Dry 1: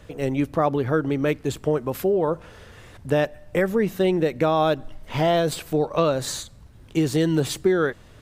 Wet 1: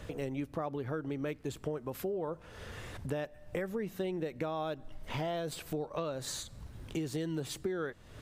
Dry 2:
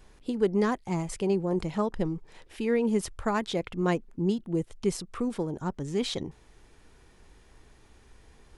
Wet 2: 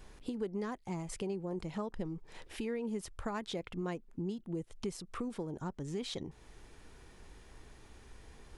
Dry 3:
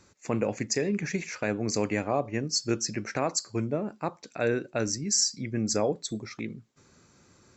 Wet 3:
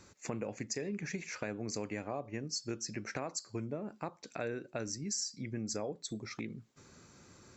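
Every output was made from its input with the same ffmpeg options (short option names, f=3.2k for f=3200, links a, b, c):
-af "acompressor=threshold=-40dB:ratio=3,volume=1dB"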